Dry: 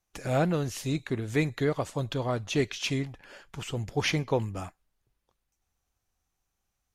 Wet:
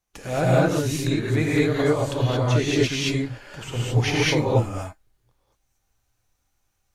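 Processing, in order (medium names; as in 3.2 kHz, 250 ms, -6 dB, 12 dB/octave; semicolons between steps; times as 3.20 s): gated-style reverb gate 250 ms rising, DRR -6.5 dB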